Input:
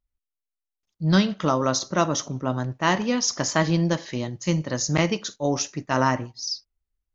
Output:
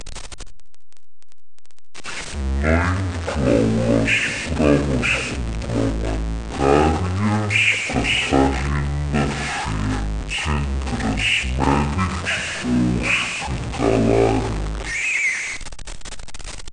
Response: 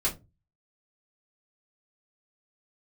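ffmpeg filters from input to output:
-filter_complex "[0:a]aeval=exprs='val(0)+0.5*0.0562*sgn(val(0))':c=same,bandreject=f=50:t=h:w=6,bandreject=f=100:t=h:w=6,bandreject=f=150:t=h:w=6,bandreject=f=200:t=h:w=6,bandreject=f=250:t=h:w=6,bandreject=f=300:t=h:w=6,bandreject=f=350:t=h:w=6,bandreject=f=400:t=h:w=6,bandreject=f=450:t=h:w=6,asetrate=18846,aresample=44100,acrossover=split=180|2500[s0][s1][s2];[s0]asoftclip=type=tanh:threshold=0.0596[s3];[s3][s1][s2]amix=inputs=3:normalize=0,aresample=22050,aresample=44100,asplit=2[s4][s5];[s5]aecho=0:1:62|77:0.168|0.141[s6];[s4][s6]amix=inputs=2:normalize=0,volume=1.58"

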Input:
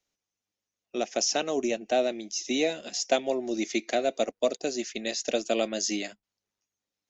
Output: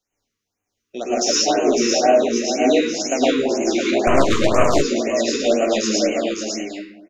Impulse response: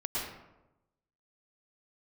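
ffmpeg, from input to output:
-filter_complex "[0:a]asettb=1/sr,asplit=3[s0][s1][s2];[s0]atrim=end=1.044[s3];[s1]atrim=start=1.04:end=1.54,asetpts=PTS-STARTPTS,afade=t=in:d=0.004:c=qsin,afade=t=out:st=0.496:d=0.004:c=qsin,highshelf=f=4000:g=4[s4];[s2]atrim=start=1.536[s5];[s3][s4]acrossfade=d=0.004:c1=hsin:c2=qsin[s6];[s6][s5]acrossfade=d=0.004:c1=qsin:c2=hsin,acontrast=86,aecho=1:1:553:0.596[s7];[1:a]atrim=start_sample=2205[s8];[s7][s8]afir=irnorm=-1:irlink=0,asettb=1/sr,asplit=3[s9][s10][s11];[s9]atrim=end=4.074[s12];[s10]atrim=start=4.07:end=4.82,asetpts=PTS-STARTPTS,afade=t=in:d=0.004:c=qsin,afade=t=out:st=0.746:d=0.004:c=qsin,aeval=exprs='1.19*(cos(1*acos(clip(val(0)/1.19,-1,1)))-cos(1*PI/2))+0.211*(cos(8*acos(clip(val(0)/1.19,-1,1)))-cos(8*PI/2))':c=same[s13];[s11]atrim=start=4.816[s14];[s12][s13]acrossfade=d=0.004:c1=hsin:c2=qsin[s15];[s15][s14]acrossfade=d=0.004:c1=qsin:c2=hsin,flanger=delay=9.3:depth=8.4:regen=53:speed=0.68:shape=sinusoidal,afftfilt=real='re*(1-between(b*sr/1024,670*pow(4400/670,0.5+0.5*sin(2*PI*2*pts/sr))/1.41,670*pow(4400/670,0.5+0.5*sin(2*PI*2*pts/sr))*1.41))':imag='im*(1-between(b*sr/1024,670*pow(4400/670,0.5+0.5*sin(2*PI*2*pts/sr))/1.41,670*pow(4400/670,0.5+0.5*sin(2*PI*2*pts/sr))*1.41))':win_size=1024:overlap=0.75,volume=1.12"

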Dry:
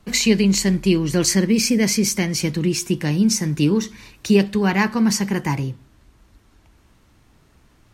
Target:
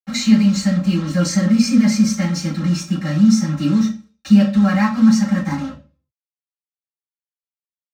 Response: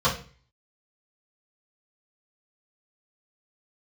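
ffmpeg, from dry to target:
-filter_complex "[0:a]acrusher=bits=4:mix=0:aa=0.5,aecho=1:1:3.8:0.97[s0];[1:a]atrim=start_sample=2205,asetrate=52920,aresample=44100[s1];[s0][s1]afir=irnorm=-1:irlink=0,volume=0.133"

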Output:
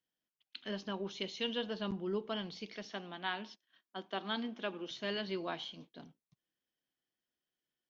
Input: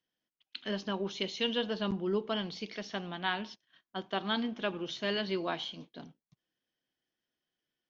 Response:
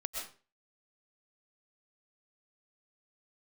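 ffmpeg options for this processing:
-filter_complex "[0:a]asettb=1/sr,asplit=3[s0][s1][s2];[s0]atrim=end=2.854[s3];[s1]atrim=start=2.85:end=4.91,asetpts=PTS-STARTPTS,afade=t=in:d=0.004:c=qsin,afade=t=out:st=2.056:d=0.004:c=qsin,highpass=f=190:w=0.5412,highpass=f=190:w=1.3066[s4];[s2]atrim=start=4.906[s5];[s3][s4]acrossfade=d=0.004:c1=hsin:c2=qsin[s6];[s6][s5]acrossfade=d=0.004:c1=qsin:c2=hsin,volume=0.562"

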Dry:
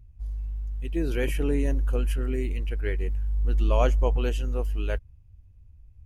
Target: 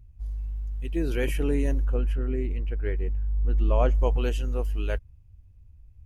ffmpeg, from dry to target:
-filter_complex "[0:a]asettb=1/sr,asplit=3[s0][s1][s2];[s0]atrim=end=1.854[s3];[s1]atrim=start=1.85:end=3.95,asetpts=PTS-STARTPTS,afade=t=in:d=0.004:c=qsin,afade=t=out:st=2.096:d=0.004:c=qsin,lowpass=f=1400:p=1[s4];[s2]atrim=start=3.946[s5];[s3][s4]acrossfade=d=0.004:c1=hsin:c2=qsin[s6];[s6][s5]acrossfade=d=0.004:c1=qsin:c2=hsin"

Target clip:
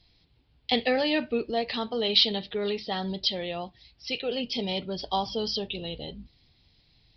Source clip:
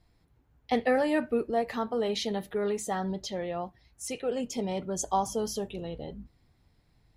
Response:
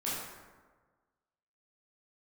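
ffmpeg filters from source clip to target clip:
-af "highshelf=f=2200:t=q:w=1.5:g=12.5,acontrast=49,aresample=11025,aresample=44100,volume=0.531"

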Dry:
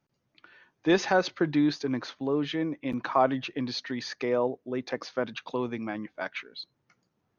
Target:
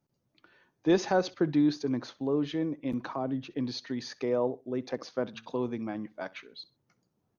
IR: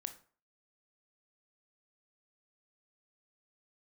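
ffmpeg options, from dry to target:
-filter_complex "[0:a]equalizer=f=2100:t=o:w=2.2:g=-8.5,asettb=1/sr,asplit=3[s0][s1][s2];[s0]atrim=end=3.114[s3];[s1]atrim=start=3.11:end=3.52,asetpts=PTS-STARTPTS,afade=t=in:d=0.004:c=qsin,afade=t=out:st=0.406:d=0.004:c=qsin,acrossover=split=360[s4][s5];[s5]acompressor=threshold=0.00794:ratio=2[s6];[s4][s6]amix=inputs=2:normalize=0[s7];[s2]atrim=start=3.516[s8];[s3][s7]acrossfade=d=0.004:c1=hsin:c2=qsin[s9];[s9][s8]acrossfade=d=0.004:c1=qsin:c2=hsin,asettb=1/sr,asplit=3[s10][s11][s12];[s10]atrim=end=5.254[s13];[s11]atrim=start=5.25:end=5.66,asetpts=PTS-STARTPTS,afade=t=in:d=0.004:c=qsin,afade=t=out:st=0.406:d=0.004:c=qsin,bandreject=f=112.7:t=h:w=4,bandreject=f=225.4:t=h:w=4,bandreject=f=338.1:t=h:w=4,bandreject=f=450.8:t=h:w=4,bandreject=f=563.5:t=h:w=4,bandreject=f=676.2:t=h:w=4,bandreject=f=788.9:t=h:w=4,bandreject=f=901.6:t=h:w=4,bandreject=f=1014.3:t=h:w=4,bandreject=f=1127:t=h:w=4,bandreject=f=1239.7:t=h:w=4,bandreject=f=1352.4:t=h:w=4,bandreject=f=1465.1:t=h:w=4,bandreject=f=1577.8:t=h:w=4,bandreject=f=1690.5:t=h:w=4[s14];[s12]atrim=start=5.656[s15];[s13][s14]acrossfade=d=0.004:c1=hsin:c2=qsin[s16];[s16][s15]acrossfade=d=0.004:c1=qsin:c2=hsin,aecho=1:1:64|128:0.0891|0.0223"

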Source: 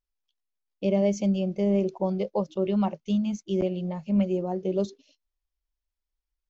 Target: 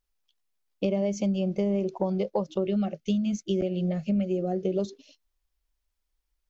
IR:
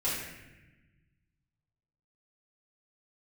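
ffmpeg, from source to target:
-filter_complex "[0:a]acompressor=threshold=0.0316:ratio=6,asettb=1/sr,asplit=3[s0][s1][s2];[s0]atrim=end=2.644[s3];[s1]atrim=start=2.64:end=4.79,asetpts=PTS-STARTPTS,afade=t=in:d=0.004:c=qsin,afade=t=out:st=2.146:d=0.004:c=qsin,asuperstop=centerf=970:order=4:qfactor=1.9[s4];[s2]atrim=start=4.786[s5];[s3][s4]acrossfade=d=0.004:c1=hsin:c2=qsin[s6];[s6][s5]acrossfade=d=0.004:c1=qsin:c2=hsin,volume=2.11"

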